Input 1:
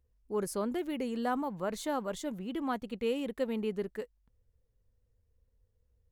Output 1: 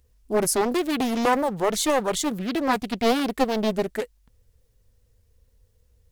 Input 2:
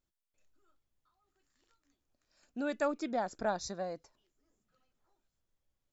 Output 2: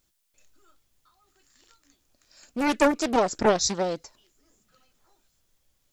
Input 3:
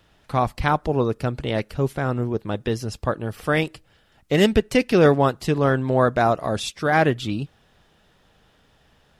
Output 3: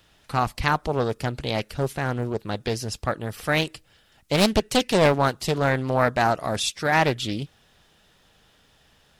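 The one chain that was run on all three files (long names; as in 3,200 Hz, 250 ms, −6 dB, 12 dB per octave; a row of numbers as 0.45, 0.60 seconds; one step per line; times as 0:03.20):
high-shelf EQ 2,500 Hz +9 dB
highs frequency-modulated by the lows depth 0.69 ms
loudness normalisation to −24 LKFS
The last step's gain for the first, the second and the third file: +10.5, +10.5, −2.5 decibels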